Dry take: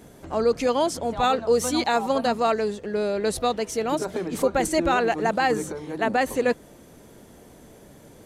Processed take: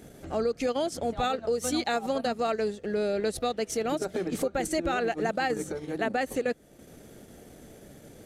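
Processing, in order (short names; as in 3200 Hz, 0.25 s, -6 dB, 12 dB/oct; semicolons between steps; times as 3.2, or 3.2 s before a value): bell 990 Hz -13.5 dB 0.24 oct; compressor 10:1, threshold -23 dBFS, peak gain reduction 8 dB; transient shaper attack -2 dB, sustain -8 dB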